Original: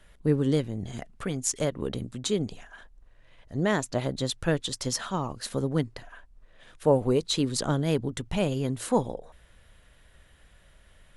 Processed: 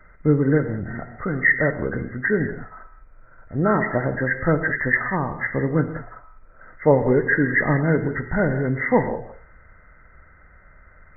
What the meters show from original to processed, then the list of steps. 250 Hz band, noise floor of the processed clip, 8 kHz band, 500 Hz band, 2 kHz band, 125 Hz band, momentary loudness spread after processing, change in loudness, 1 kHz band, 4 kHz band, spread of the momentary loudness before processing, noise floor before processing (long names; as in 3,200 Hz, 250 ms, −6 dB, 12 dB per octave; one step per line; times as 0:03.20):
+6.0 dB, −50 dBFS, below −40 dB, +6.0 dB, +18.0 dB, +6.0 dB, 11 LU, +7.0 dB, +7.5 dB, below −40 dB, 12 LU, −58 dBFS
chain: hearing-aid frequency compression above 1,200 Hz 4 to 1
reverb whose tail is shaped and stops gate 220 ms flat, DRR 7.5 dB
level +5.5 dB